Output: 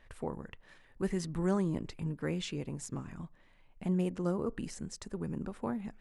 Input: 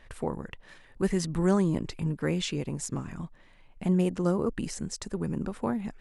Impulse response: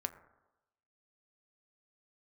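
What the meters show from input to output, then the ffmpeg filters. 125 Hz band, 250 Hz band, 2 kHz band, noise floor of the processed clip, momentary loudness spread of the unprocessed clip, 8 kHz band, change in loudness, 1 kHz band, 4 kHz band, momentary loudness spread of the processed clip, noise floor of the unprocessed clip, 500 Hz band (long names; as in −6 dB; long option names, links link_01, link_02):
−6.0 dB, −6.0 dB, −6.5 dB, −62 dBFS, 13 LU, −8.5 dB, −6.5 dB, −6.0 dB, −7.5 dB, 13 LU, −56 dBFS, −6.5 dB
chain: -filter_complex "[0:a]asplit=2[link_01][link_02];[1:a]atrim=start_sample=2205,afade=type=out:start_time=0.16:duration=0.01,atrim=end_sample=7497,lowpass=4100[link_03];[link_02][link_03]afir=irnorm=-1:irlink=0,volume=-11.5dB[link_04];[link_01][link_04]amix=inputs=2:normalize=0,volume=-8dB"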